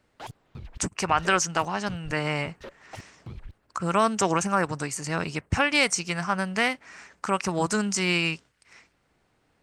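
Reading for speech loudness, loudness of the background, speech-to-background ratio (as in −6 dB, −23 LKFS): −26.0 LKFS, −45.5 LKFS, 19.5 dB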